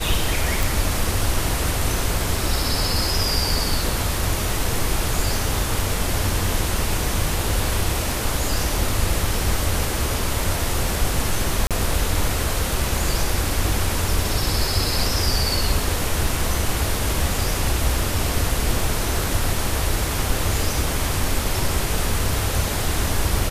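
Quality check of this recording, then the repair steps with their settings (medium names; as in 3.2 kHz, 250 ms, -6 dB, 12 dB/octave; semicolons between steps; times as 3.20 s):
0.63 s: pop
11.67–11.71 s: dropout 37 ms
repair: de-click; interpolate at 11.67 s, 37 ms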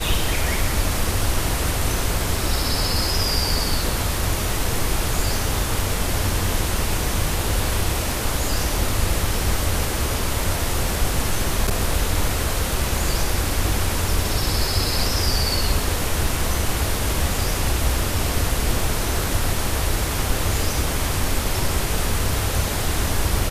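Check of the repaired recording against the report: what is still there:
nothing left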